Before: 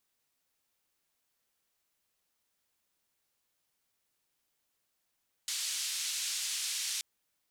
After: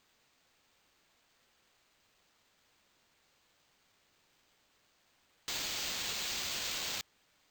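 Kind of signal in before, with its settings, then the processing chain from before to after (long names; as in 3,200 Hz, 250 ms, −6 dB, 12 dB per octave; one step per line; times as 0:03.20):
band-limited noise 3,100–7,600 Hz, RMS −35.5 dBFS 1.53 s
in parallel at −10 dB: sine wavefolder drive 18 dB, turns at −23.5 dBFS
on the sum: bad sample-rate conversion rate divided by 4×, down filtered, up hold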